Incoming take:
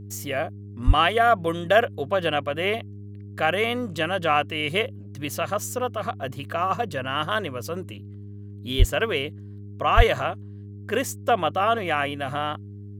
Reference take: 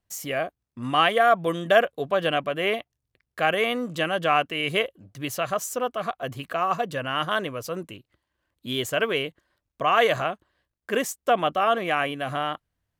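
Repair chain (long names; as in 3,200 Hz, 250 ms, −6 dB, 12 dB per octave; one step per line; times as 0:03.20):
hum removal 101.5 Hz, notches 4
high-pass at the plosives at 0:00.86/0:08.78/0:09.96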